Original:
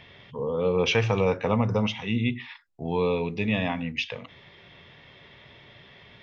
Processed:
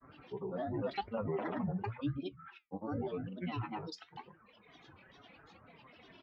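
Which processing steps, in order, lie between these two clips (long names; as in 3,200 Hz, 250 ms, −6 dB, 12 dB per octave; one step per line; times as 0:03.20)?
low-pass filter 2,100 Hz 24 dB per octave
reverb reduction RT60 1.4 s
high-pass filter 56 Hz
comb filter 4.7 ms, depth 79%
downward compressor 2 to 1, threshold −39 dBFS, peak gain reduction 12 dB
granular cloud, grains 20 per second, pitch spread up and down by 12 semitones
flanger 0.89 Hz, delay 4.7 ms, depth 6.7 ms, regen +71%
level +1.5 dB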